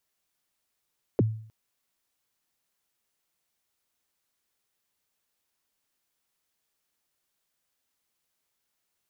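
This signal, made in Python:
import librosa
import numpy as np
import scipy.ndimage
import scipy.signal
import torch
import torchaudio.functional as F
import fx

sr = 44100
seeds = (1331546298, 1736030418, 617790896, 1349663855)

y = fx.drum_kick(sr, seeds[0], length_s=0.31, level_db=-16, start_hz=540.0, end_hz=110.0, sweep_ms=26.0, decay_s=0.54, click=False)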